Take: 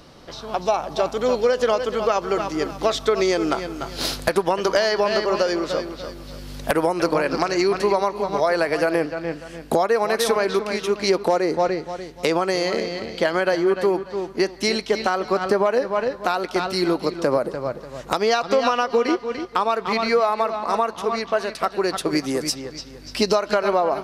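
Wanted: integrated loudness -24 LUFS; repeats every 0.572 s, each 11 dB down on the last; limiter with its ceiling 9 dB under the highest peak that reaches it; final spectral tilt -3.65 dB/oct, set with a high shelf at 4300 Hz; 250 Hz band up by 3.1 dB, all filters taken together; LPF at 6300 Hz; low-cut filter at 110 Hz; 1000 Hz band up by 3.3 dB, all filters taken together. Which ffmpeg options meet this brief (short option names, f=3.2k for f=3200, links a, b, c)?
-af "highpass=110,lowpass=6.3k,equalizer=f=250:t=o:g=4.5,equalizer=f=1k:t=o:g=4.5,highshelf=f=4.3k:g=-6.5,alimiter=limit=-11.5dB:level=0:latency=1,aecho=1:1:572|1144|1716:0.282|0.0789|0.0221,volume=-2dB"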